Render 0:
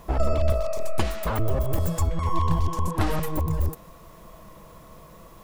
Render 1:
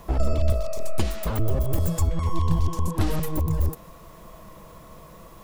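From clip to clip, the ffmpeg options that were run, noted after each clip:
-filter_complex "[0:a]acrossover=split=470|3000[s0][s1][s2];[s1]acompressor=threshold=0.00794:ratio=2[s3];[s0][s3][s2]amix=inputs=3:normalize=0,volume=1.19"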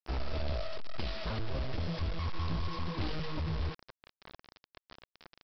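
-af "highshelf=f=2300:g=9.5,asoftclip=type=tanh:threshold=0.0841,aresample=11025,acrusher=bits=5:mix=0:aa=0.000001,aresample=44100,volume=0.447"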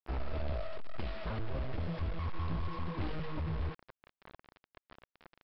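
-af "lowpass=2500,volume=0.841"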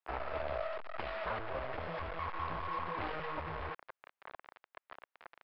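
-filter_complex "[0:a]acrossover=split=510 2600:gain=0.112 1 0.2[s0][s1][s2];[s0][s1][s2]amix=inputs=3:normalize=0,volume=2.51"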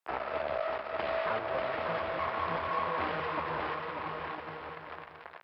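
-filter_complex "[0:a]highpass=140,asplit=2[s0][s1];[s1]aecho=0:1:590|1003|1292|1494|1636:0.631|0.398|0.251|0.158|0.1[s2];[s0][s2]amix=inputs=2:normalize=0,volume=1.68"

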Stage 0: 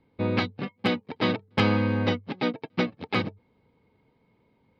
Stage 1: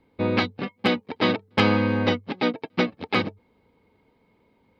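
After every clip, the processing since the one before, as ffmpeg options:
-af "equalizer=f=130:w=1.8:g=-7.5,volume=1.58"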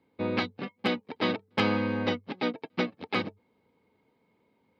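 -af "highpass=110,volume=0.501"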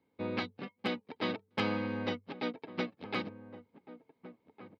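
-filter_complex "[0:a]asplit=2[s0][s1];[s1]adelay=1458,volume=0.2,highshelf=f=4000:g=-32.8[s2];[s0][s2]amix=inputs=2:normalize=0,volume=0.473"

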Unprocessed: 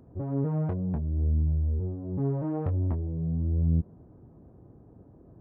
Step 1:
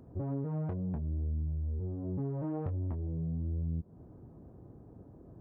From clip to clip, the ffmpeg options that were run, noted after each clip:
-af "acompressor=threshold=0.0251:ratio=6"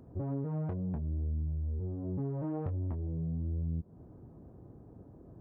-af anull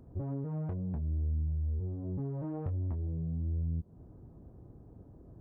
-af "lowshelf=f=67:g=11.5,volume=0.708"

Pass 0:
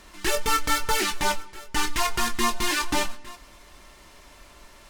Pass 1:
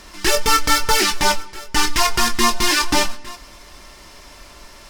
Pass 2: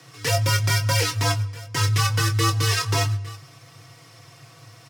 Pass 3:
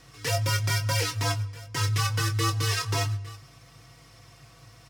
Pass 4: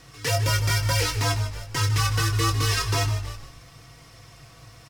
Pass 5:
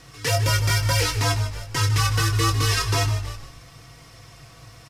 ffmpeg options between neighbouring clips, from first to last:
-af "equalizer=f=5200:t=o:w=0.36:g=6.5,volume=2.24"
-af "aecho=1:1:4.9:0.56,afreqshift=100,volume=0.398"
-af "aeval=exprs='val(0)+0.002*(sin(2*PI*50*n/s)+sin(2*PI*2*50*n/s)/2+sin(2*PI*3*50*n/s)/3+sin(2*PI*4*50*n/s)/4+sin(2*PI*5*50*n/s)/5)':c=same,volume=0.562"
-filter_complex "[0:a]asplit=2[s0][s1];[s1]volume=15.8,asoftclip=hard,volume=0.0631,volume=0.501[s2];[s0][s2]amix=inputs=2:normalize=0,asplit=5[s3][s4][s5][s6][s7];[s4]adelay=152,afreqshift=-54,volume=0.266[s8];[s5]adelay=304,afreqshift=-108,volume=0.0955[s9];[s6]adelay=456,afreqshift=-162,volume=0.0347[s10];[s7]adelay=608,afreqshift=-216,volume=0.0124[s11];[s3][s8][s9][s10][s11]amix=inputs=5:normalize=0"
-af "aresample=32000,aresample=44100,volume=1.26"

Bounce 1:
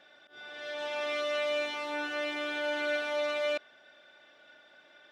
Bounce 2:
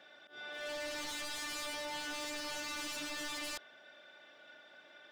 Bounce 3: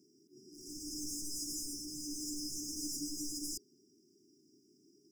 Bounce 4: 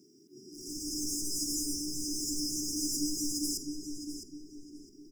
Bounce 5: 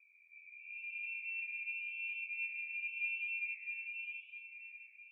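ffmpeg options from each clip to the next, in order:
-af "highpass=f=99:w=0.5412,highpass=f=99:w=1.3066,aeval=exprs='0.015*(abs(mod(val(0)/0.015+3,4)-2)-1)':c=same"
-af "afftfilt=real='re*(1-between(b*sr/4096,430,4800))':imag='im*(1-between(b*sr/4096,430,4800))':win_size=4096:overlap=0.75,volume=2"
-filter_complex "[0:a]asplit=2[s0][s1];[s1]adelay=659,lowpass=f=2900:p=1,volume=0.631,asplit=2[s2][s3];[s3]adelay=659,lowpass=f=2900:p=1,volume=0.41,asplit=2[s4][s5];[s5]adelay=659,lowpass=f=2900:p=1,volume=0.41,asplit=2[s6][s7];[s7]adelay=659,lowpass=f=2900:p=1,volume=0.41,asplit=2[s8][s9];[s9]adelay=659,lowpass=f=2900:p=1,volume=0.41[s10];[s0][s2][s4][s6][s8][s10]amix=inputs=6:normalize=0,volume=2.11"
-af "lowpass=f=2300:t=q:w=0.5098,lowpass=f=2300:t=q:w=0.6013,lowpass=f=2300:t=q:w=0.9,lowpass=f=2300:t=q:w=2.563,afreqshift=-2700,flanger=delay=9.7:depth=6.1:regen=-89:speed=0.91:shape=triangular"

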